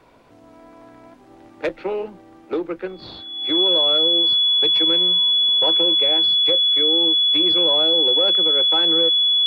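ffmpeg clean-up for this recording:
-af "bandreject=f=3.4k:w=30"

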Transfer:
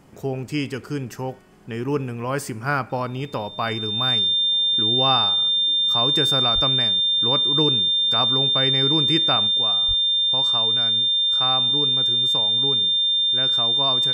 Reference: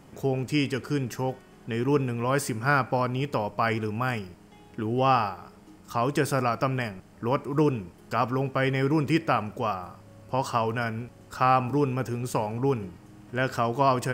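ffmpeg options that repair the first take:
-filter_complex "[0:a]bandreject=f=3.6k:w=30,asplit=3[a][b][c];[a]afade=t=out:st=6.54:d=0.02[d];[b]highpass=f=140:w=0.5412,highpass=f=140:w=1.3066,afade=t=in:st=6.54:d=0.02,afade=t=out:st=6.66:d=0.02[e];[c]afade=t=in:st=6.66:d=0.02[f];[d][e][f]amix=inputs=3:normalize=0,asplit=3[g][h][i];[g]afade=t=out:st=9.87:d=0.02[j];[h]highpass=f=140:w=0.5412,highpass=f=140:w=1.3066,afade=t=in:st=9.87:d=0.02,afade=t=out:st=9.99:d=0.02[k];[i]afade=t=in:st=9.99:d=0.02[l];[j][k][l]amix=inputs=3:normalize=0,asetnsamples=n=441:p=0,asendcmd='9.47 volume volume 5.5dB',volume=0dB"

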